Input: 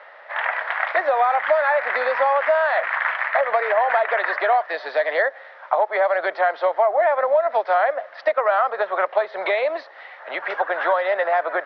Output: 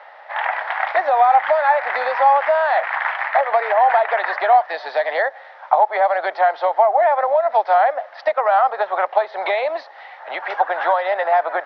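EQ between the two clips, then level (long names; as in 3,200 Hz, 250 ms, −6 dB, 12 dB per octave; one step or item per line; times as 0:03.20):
parametric band 810 Hz +11.5 dB 0.55 octaves
high-shelf EQ 3,000 Hz +9 dB
−3.5 dB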